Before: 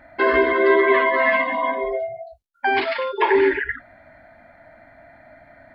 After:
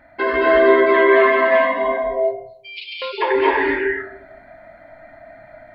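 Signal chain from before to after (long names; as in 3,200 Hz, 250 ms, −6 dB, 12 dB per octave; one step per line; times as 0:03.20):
0:02.15–0:03.02: Butterworth high-pass 2,400 Hz 96 dB per octave
convolution reverb RT60 0.70 s, pre-delay 184 ms, DRR −4 dB
level −2 dB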